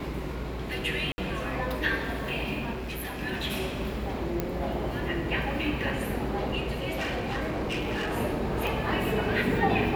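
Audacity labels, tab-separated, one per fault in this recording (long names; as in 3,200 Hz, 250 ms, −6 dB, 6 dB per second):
1.120000	1.180000	drop-out 60 ms
2.720000	3.230000	clipping −31.5 dBFS
4.400000	4.400000	click −14 dBFS
6.890000	8.180000	clipping −27 dBFS
8.670000	8.670000	click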